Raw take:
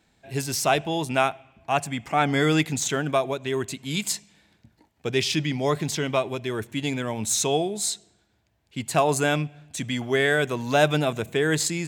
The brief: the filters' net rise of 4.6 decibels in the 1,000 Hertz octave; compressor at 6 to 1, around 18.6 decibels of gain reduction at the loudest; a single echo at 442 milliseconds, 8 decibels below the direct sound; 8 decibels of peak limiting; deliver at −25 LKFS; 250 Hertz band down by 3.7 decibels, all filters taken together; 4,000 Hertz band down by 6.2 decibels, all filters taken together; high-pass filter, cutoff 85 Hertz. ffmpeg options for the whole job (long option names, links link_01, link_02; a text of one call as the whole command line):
ffmpeg -i in.wav -af "highpass=85,equalizer=frequency=250:width_type=o:gain=-5.5,equalizer=frequency=1000:width_type=o:gain=7.5,equalizer=frequency=4000:width_type=o:gain=-8.5,acompressor=threshold=-34dB:ratio=6,alimiter=level_in=3dB:limit=-24dB:level=0:latency=1,volume=-3dB,aecho=1:1:442:0.398,volume=14dB" out.wav